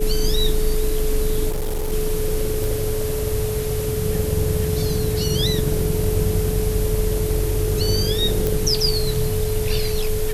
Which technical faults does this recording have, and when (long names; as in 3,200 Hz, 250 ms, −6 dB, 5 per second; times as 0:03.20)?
whistle 430 Hz −24 dBFS
0:01.49–0:01.93: clipping −20 dBFS
0:02.64: click
0:08.47: click